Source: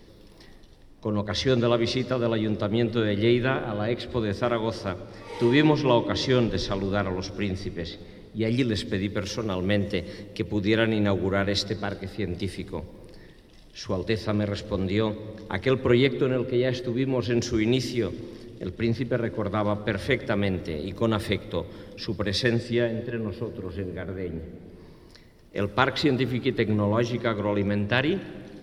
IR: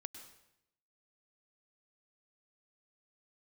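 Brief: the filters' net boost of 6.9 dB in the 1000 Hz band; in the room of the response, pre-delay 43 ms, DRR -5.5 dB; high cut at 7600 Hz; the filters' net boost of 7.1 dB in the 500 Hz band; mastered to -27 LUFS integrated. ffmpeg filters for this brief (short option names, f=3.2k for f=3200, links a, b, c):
-filter_complex "[0:a]lowpass=7.6k,equalizer=f=500:t=o:g=7.5,equalizer=f=1k:t=o:g=6.5,asplit=2[a][b];[1:a]atrim=start_sample=2205,adelay=43[c];[b][c]afir=irnorm=-1:irlink=0,volume=9.5dB[d];[a][d]amix=inputs=2:normalize=0,volume=-11.5dB"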